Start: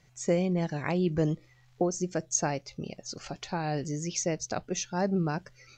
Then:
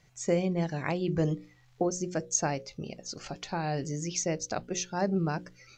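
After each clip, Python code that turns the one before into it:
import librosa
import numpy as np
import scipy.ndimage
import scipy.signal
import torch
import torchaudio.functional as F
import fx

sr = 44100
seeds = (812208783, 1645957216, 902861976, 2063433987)

y = fx.hum_notches(x, sr, base_hz=60, count=9)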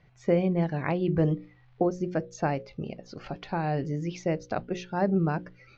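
y = fx.air_absorb(x, sr, metres=330.0)
y = F.gain(torch.from_numpy(y), 4.0).numpy()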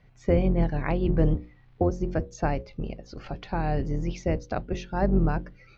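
y = fx.octave_divider(x, sr, octaves=2, level_db=2.0)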